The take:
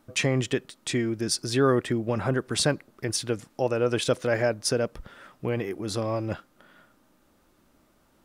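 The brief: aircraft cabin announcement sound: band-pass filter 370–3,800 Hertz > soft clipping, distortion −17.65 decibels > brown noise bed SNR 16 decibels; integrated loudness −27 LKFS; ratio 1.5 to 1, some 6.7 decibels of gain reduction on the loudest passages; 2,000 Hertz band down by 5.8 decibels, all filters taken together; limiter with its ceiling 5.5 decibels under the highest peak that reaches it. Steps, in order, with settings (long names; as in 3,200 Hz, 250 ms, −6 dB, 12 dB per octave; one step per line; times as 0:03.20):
parametric band 2,000 Hz −7.5 dB
downward compressor 1.5 to 1, threshold −37 dBFS
brickwall limiter −23 dBFS
band-pass filter 370–3,800 Hz
soft clipping −28 dBFS
brown noise bed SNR 16 dB
level +13 dB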